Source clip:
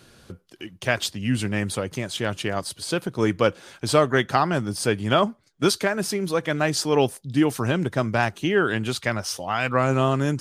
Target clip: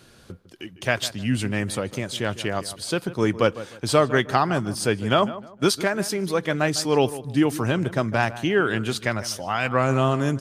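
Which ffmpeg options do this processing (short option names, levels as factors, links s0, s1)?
-filter_complex "[0:a]asplit=2[s0][s1];[s1]adelay=153,lowpass=f=1900:p=1,volume=0.188,asplit=2[s2][s3];[s3]adelay=153,lowpass=f=1900:p=1,volume=0.3,asplit=2[s4][s5];[s5]adelay=153,lowpass=f=1900:p=1,volume=0.3[s6];[s0][s2][s4][s6]amix=inputs=4:normalize=0"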